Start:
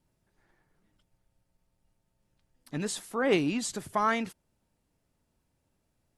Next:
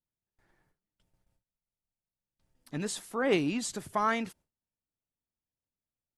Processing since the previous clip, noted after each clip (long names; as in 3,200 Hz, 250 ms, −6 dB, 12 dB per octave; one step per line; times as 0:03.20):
noise gate with hold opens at −60 dBFS
level −1.5 dB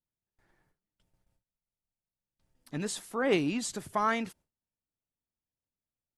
no processing that can be heard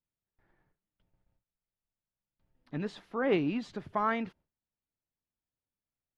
high-frequency loss of the air 300 metres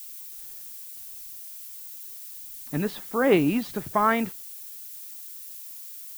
background noise violet −49 dBFS
level +8 dB